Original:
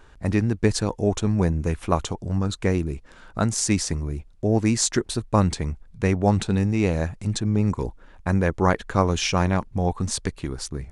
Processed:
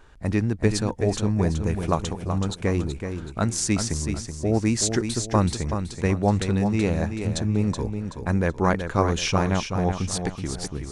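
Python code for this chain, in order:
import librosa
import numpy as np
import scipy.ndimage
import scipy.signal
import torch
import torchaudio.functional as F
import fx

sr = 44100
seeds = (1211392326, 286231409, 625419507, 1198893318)

y = fx.echo_feedback(x, sr, ms=377, feedback_pct=37, wet_db=-7.5)
y = F.gain(torch.from_numpy(y), -1.5).numpy()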